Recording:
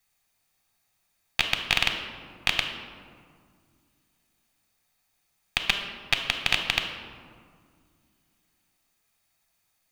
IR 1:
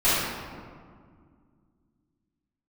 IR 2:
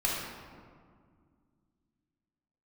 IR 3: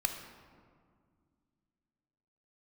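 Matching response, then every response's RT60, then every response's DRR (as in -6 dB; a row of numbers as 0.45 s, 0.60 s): 3; 2.0 s, 2.0 s, 2.0 s; -14.5 dB, -5.0 dB, 4.5 dB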